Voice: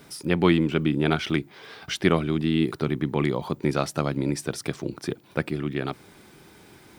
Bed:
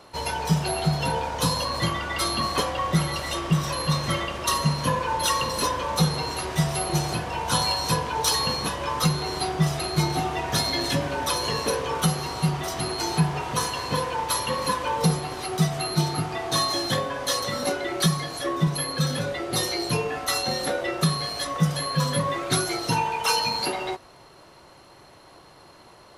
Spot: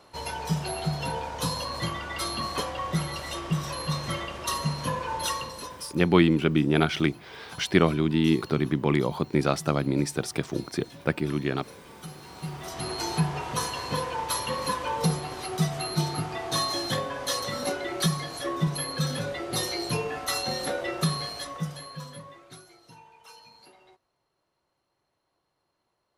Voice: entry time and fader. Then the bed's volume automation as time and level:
5.70 s, +0.5 dB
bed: 5.28 s -5.5 dB
6.03 s -23.5 dB
11.9 s -23.5 dB
12.91 s -3.5 dB
21.2 s -3.5 dB
22.75 s -27.5 dB

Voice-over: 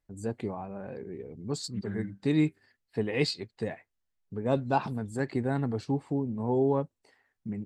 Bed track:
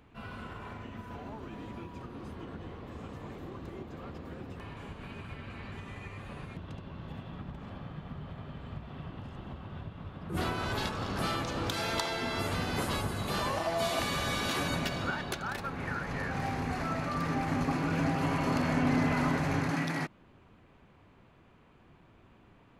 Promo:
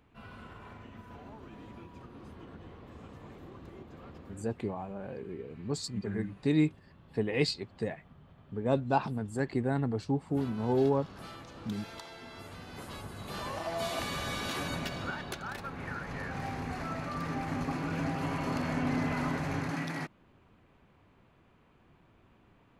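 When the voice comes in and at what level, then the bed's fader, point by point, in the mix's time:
4.20 s, -1.0 dB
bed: 4.2 s -5.5 dB
4.74 s -14 dB
12.62 s -14 dB
13.74 s -3.5 dB

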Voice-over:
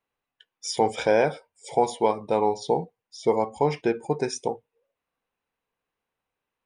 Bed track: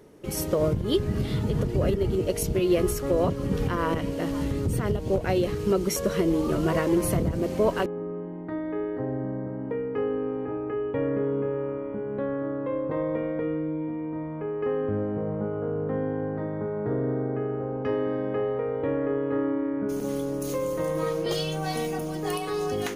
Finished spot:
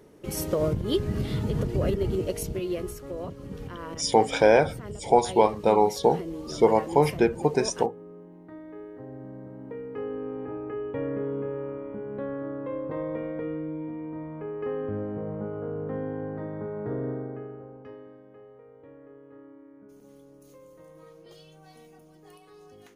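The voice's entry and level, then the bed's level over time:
3.35 s, +2.5 dB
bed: 2.15 s -1.5 dB
3.05 s -12 dB
9.02 s -12 dB
10.43 s -4 dB
17.08 s -4 dB
18.24 s -23 dB

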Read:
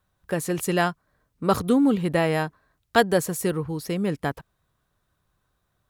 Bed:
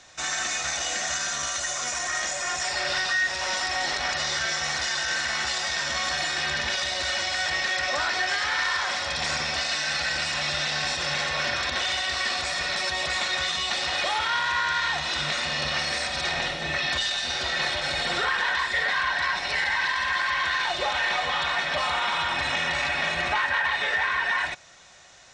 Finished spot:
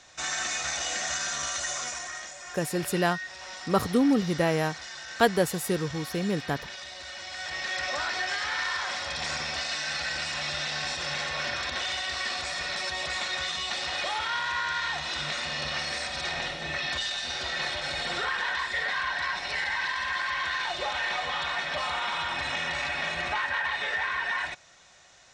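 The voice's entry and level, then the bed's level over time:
2.25 s, -3.0 dB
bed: 1.76 s -2.5 dB
2.33 s -13.5 dB
7.15 s -13.5 dB
7.78 s -4.5 dB

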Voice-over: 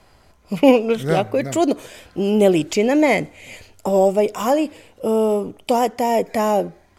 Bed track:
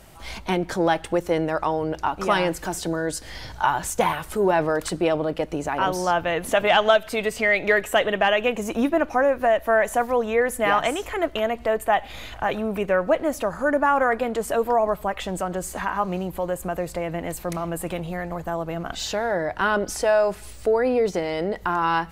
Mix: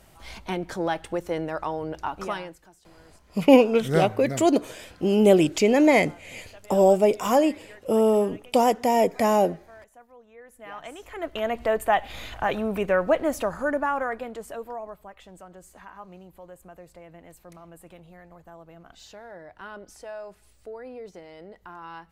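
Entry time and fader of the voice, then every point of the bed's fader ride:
2.85 s, -2.0 dB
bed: 2.23 s -6 dB
2.77 s -29.5 dB
10.31 s -29.5 dB
11.55 s -1 dB
13.39 s -1 dB
15.11 s -19 dB

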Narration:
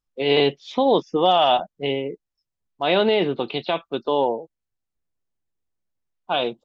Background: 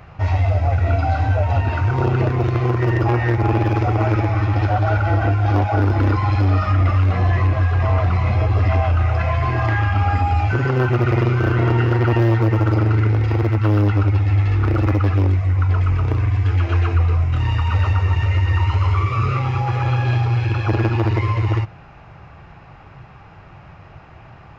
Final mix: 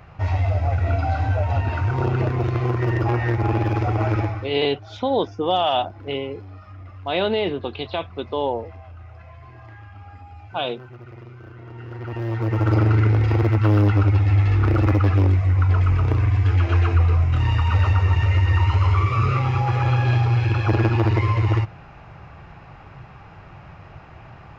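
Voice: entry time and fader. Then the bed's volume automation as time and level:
4.25 s, -3.0 dB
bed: 4.24 s -3.5 dB
4.61 s -24 dB
11.64 s -24 dB
12.74 s -0.5 dB

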